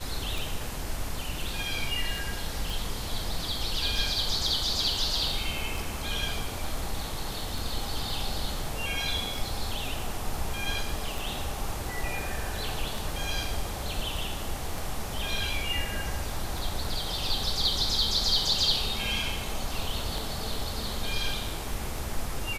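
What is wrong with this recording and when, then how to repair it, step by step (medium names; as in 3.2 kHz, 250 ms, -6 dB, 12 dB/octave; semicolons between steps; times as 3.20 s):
tick 33 1/3 rpm
2.70 s: pop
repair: de-click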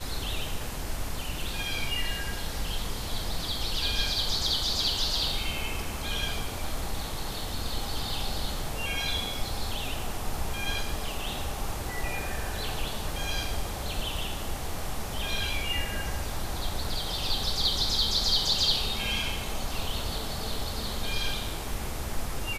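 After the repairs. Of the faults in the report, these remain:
nothing left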